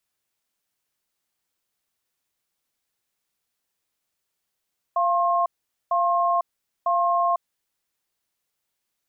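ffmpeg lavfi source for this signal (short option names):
-f lavfi -i "aevalsrc='0.0891*(sin(2*PI*692*t)+sin(2*PI*1070*t))*clip(min(mod(t,0.95),0.5-mod(t,0.95))/0.005,0,1)':d=2.49:s=44100"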